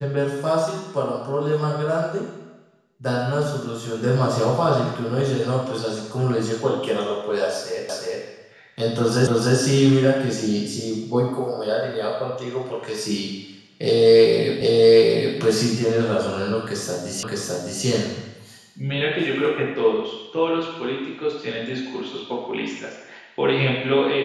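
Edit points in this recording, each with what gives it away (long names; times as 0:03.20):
0:07.89: the same again, the last 0.36 s
0:09.27: the same again, the last 0.3 s
0:14.61: the same again, the last 0.77 s
0:17.23: the same again, the last 0.61 s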